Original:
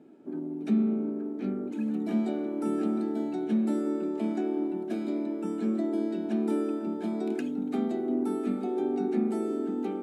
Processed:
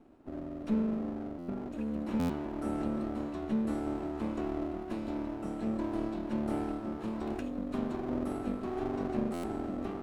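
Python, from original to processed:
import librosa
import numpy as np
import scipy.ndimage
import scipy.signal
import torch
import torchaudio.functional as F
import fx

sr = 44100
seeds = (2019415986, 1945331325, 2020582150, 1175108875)

y = fx.lower_of_two(x, sr, delay_ms=0.73)
y = fx.buffer_glitch(y, sr, at_s=(1.38, 2.19, 9.33), block=512, repeats=8)
y = y * 10.0 ** (-4.0 / 20.0)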